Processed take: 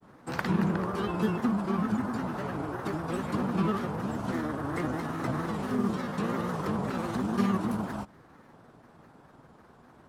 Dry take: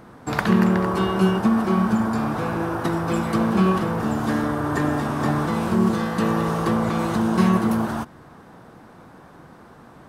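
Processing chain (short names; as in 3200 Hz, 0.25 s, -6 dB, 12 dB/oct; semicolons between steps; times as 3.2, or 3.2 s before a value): grains, spray 11 ms, pitch spread up and down by 3 st; gain -8 dB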